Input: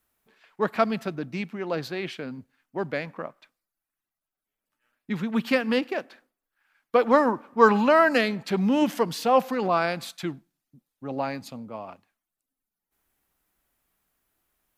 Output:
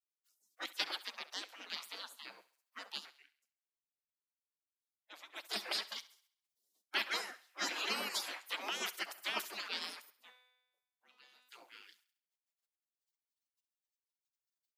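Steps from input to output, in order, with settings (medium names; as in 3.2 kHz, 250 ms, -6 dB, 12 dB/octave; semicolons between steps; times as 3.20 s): 3.01–5.62 s: dip -13 dB, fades 0.36 s quadratic; spectral gate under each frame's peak -30 dB weak; steep high-pass 190 Hz 96 dB/octave; harmonic-percussive split harmonic -8 dB; 10.10–11.49 s: feedback comb 250 Hz, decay 0.99 s, mix 90%; thinning echo 67 ms, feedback 46%, high-pass 400 Hz, level -17 dB; trim +7.5 dB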